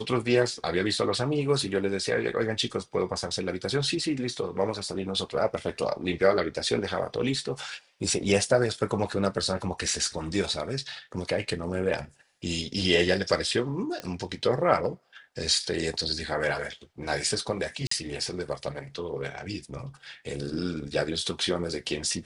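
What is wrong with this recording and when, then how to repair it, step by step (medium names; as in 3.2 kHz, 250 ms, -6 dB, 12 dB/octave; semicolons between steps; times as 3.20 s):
14.00 s: pop -19 dBFS
17.87–17.91 s: dropout 44 ms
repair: de-click; interpolate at 17.87 s, 44 ms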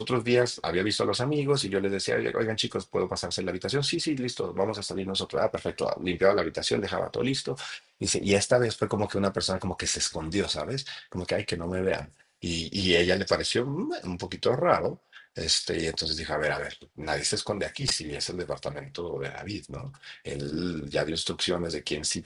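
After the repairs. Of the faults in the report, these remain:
nothing left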